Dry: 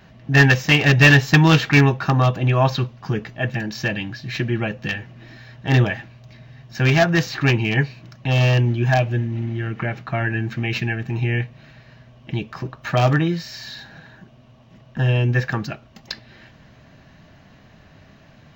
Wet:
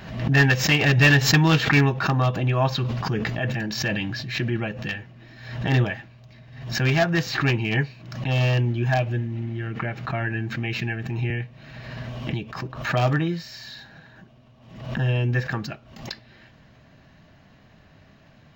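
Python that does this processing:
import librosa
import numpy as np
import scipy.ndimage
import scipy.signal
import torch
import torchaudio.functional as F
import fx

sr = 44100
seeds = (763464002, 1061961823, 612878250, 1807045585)

y = fx.sustainer(x, sr, db_per_s=25.0, at=(2.81, 4.57))
y = fx.band_squash(y, sr, depth_pct=100, at=(11.3, 12.54))
y = fx.notch(y, sr, hz=6000.0, q=18.0)
y = fx.pre_swell(y, sr, db_per_s=75.0)
y = y * 10.0 ** (-4.5 / 20.0)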